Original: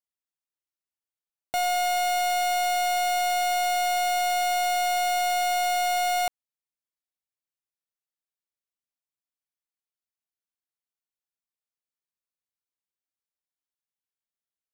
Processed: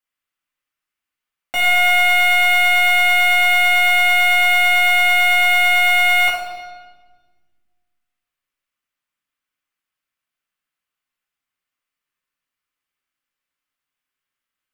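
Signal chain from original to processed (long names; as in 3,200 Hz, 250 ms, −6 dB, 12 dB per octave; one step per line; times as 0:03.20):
flat-topped bell 1,800 Hz +9 dB
convolution reverb RT60 1.4 s, pre-delay 4 ms, DRR −6 dB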